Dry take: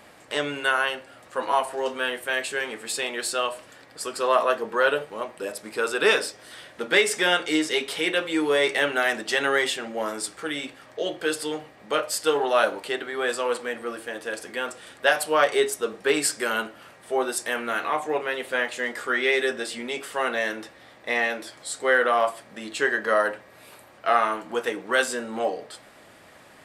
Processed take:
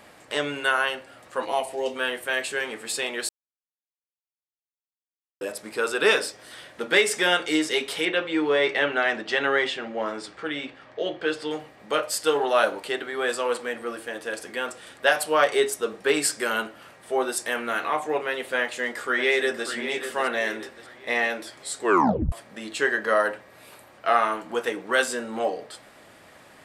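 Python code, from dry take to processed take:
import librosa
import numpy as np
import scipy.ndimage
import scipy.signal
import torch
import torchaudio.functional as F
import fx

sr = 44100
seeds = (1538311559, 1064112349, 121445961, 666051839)

y = fx.band_shelf(x, sr, hz=1300.0, db=-12.0, octaves=1.0, at=(1.45, 1.96))
y = fx.lowpass(y, sr, hz=3900.0, slope=12, at=(8.05, 11.51))
y = fx.echo_throw(y, sr, start_s=18.59, length_s=1.09, ms=590, feedback_pct=40, wet_db=-9.5)
y = fx.edit(y, sr, fx.silence(start_s=3.29, length_s=2.12),
    fx.tape_stop(start_s=21.81, length_s=0.51), tone=tone)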